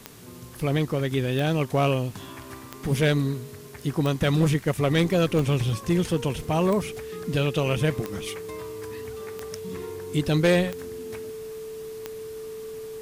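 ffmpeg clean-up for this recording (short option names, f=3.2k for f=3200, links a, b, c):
-af "adeclick=t=4,bandreject=f=440:w=30,afwtdn=0.0032"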